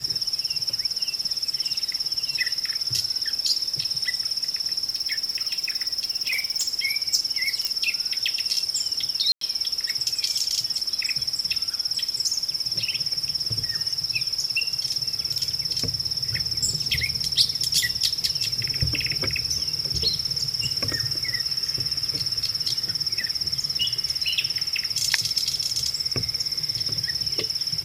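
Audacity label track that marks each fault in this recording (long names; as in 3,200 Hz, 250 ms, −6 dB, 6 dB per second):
4.890000	6.690000	clipping −20 dBFS
7.650000	7.650000	click −10 dBFS
9.320000	9.410000	drop-out 93 ms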